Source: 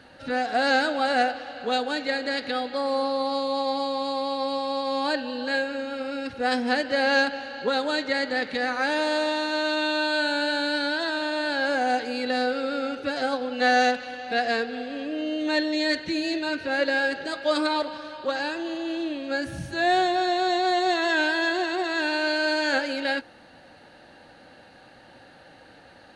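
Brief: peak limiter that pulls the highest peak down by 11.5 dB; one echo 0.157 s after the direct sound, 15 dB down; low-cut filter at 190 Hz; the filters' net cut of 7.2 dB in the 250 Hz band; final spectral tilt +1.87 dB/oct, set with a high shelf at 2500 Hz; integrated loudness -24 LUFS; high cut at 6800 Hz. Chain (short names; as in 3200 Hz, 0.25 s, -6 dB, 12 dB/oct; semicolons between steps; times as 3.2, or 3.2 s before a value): HPF 190 Hz; LPF 6800 Hz; bell 250 Hz -8.5 dB; high shelf 2500 Hz +5 dB; limiter -18 dBFS; echo 0.157 s -15 dB; gain +4 dB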